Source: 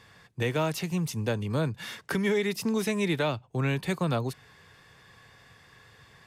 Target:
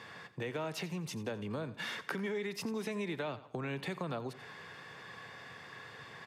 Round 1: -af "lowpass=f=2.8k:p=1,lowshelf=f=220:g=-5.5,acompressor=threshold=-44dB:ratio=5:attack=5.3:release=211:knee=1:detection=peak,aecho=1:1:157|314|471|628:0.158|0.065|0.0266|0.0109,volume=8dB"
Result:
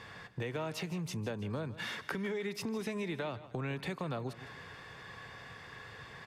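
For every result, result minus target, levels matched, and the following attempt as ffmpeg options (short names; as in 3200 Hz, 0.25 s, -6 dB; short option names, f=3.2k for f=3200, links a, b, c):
echo 70 ms late; 125 Hz band +2.5 dB
-af "lowpass=f=2.8k:p=1,lowshelf=f=220:g=-5.5,acompressor=threshold=-44dB:ratio=5:attack=5.3:release=211:knee=1:detection=peak,aecho=1:1:87|174|261|348:0.158|0.065|0.0266|0.0109,volume=8dB"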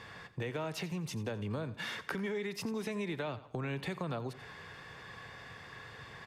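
125 Hz band +2.5 dB
-af "lowpass=f=2.8k:p=1,lowshelf=f=220:g=-5.5,acompressor=threshold=-44dB:ratio=5:attack=5.3:release=211:knee=1:detection=peak,highpass=140,aecho=1:1:87|174|261|348:0.158|0.065|0.0266|0.0109,volume=8dB"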